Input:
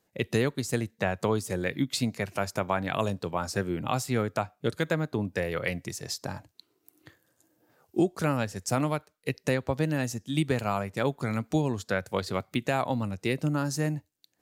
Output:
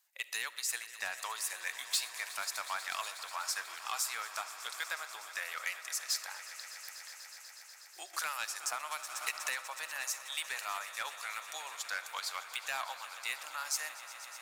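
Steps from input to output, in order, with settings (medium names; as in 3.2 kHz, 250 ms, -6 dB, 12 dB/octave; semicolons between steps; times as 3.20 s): high-pass 910 Hz 24 dB/octave; saturation -24.5 dBFS, distortion -14 dB; tilt EQ +2.5 dB/octave; echo with a slow build-up 122 ms, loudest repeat 5, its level -17 dB; reverberation RT60 0.75 s, pre-delay 25 ms, DRR 17 dB; 8.13–9.61 s: three bands compressed up and down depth 100%; trim -4 dB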